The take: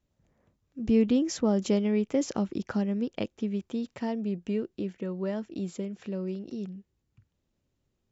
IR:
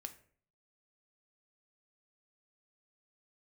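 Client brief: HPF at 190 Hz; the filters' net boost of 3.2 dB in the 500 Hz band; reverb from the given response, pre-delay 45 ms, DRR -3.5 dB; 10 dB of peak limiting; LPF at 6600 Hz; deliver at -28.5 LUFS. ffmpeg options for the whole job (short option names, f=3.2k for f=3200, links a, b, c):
-filter_complex "[0:a]highpass=190,lowpass=6.6k,equalizer=f=500:t=o:g=4,alimiter=limit=-23dB:level=0:latency=1,asplit=2[a][b];[1:a]atrim=start_sample=2205,adelay=45[c];[b][c]afir=irnorm=-1:irlink=0,volume=8dB[d];[a][d]amix=inputs=2:normalize=0"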